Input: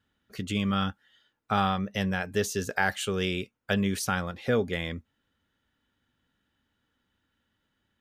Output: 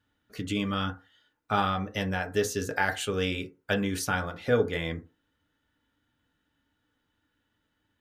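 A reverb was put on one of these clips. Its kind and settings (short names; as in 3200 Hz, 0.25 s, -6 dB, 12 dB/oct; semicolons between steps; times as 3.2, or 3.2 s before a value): FDN reverb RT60 0.32 s, low-frequency decay 0.85×, high-frequency decay 0.35×, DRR 4 dB; gain -1 dB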